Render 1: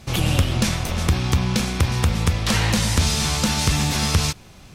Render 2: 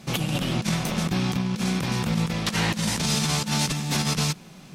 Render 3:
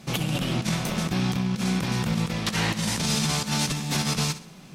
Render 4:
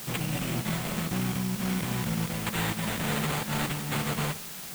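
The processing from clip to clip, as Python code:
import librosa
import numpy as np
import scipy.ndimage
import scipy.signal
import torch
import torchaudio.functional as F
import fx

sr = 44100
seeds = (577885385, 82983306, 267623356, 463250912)

y1 = fx.low_shelf_res(x, sr, hz=120.0, db=-10.5, q=3.0)
y1 = fx.over_compress(y1, sr, threshold_db=-21.0, ratio=-0.5)
y1 = y1 * librosa.db_to_amplitude(-3.0)
y2 = fx.echo_feedback(y1, sr, ms=64, feedback_pct=37, wet_db=-13.5)
y2 = y2 * librosa.db_to_amplitude(-1.0)
y3 = np.repeat(y2[::8], 8)[:len(y2)]
y3 = fx.quant_dither(y3, sr, seeds[0], bits=6, dither='triangular')
y3 = y3 * librosa.db_to_amplitude(-4.5)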